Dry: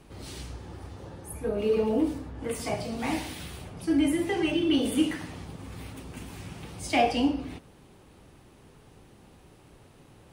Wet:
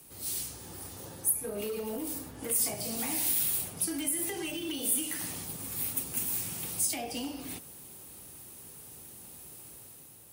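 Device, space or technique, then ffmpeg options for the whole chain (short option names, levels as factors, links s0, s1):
FM broadcast chain: -filter_complex "[0:a]highpass=63,dynaudnorm=f=100:g=11:m=1.78,acrossover=split=99|490[s0][s1][s2];[s0]acompressor=threshold=0.00316:ratio=4[s3];[s1]acompressor=threshold=0.0398:ratio=4[s4];[s2]acompressor=threshold=0.0282:ratio=4[s5];[s3][s4][s5]amix=inputs=3:normalize=0,aemphasis=mode=production:type=50fm,alimiter=limit=0.106:level=0:latency=1:release=295,asoftclip=type=hard:threshold=0.0668,lowpass=f=15000:w=0.5412,lowpass=f=15000:w=1.3066,aemphasis=mode=production:type=50fm,volume=0.447"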